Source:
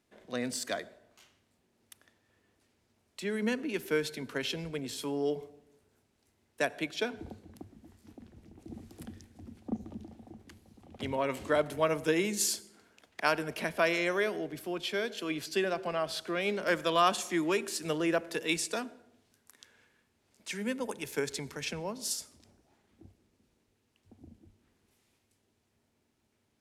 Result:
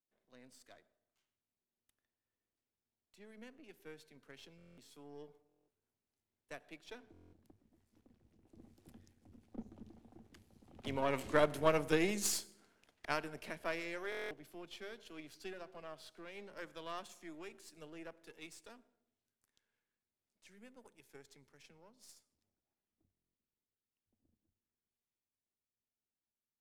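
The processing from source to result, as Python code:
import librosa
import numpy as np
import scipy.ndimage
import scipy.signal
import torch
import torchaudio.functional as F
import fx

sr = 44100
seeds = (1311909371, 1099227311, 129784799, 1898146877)

y = np.where(x < 0.0, 10.0 ** (-7.0 / 20.0) * x, x)
y = fx.doppler_pass(y, sr, speed_mps=5, closest_m=3.6, pass_at_s=11.52)
y = fx.buffer_glitch(y, sr, at_s=(4.57, 5.47, 7.12, 14.1, 23.13), block=1024, repeats=8)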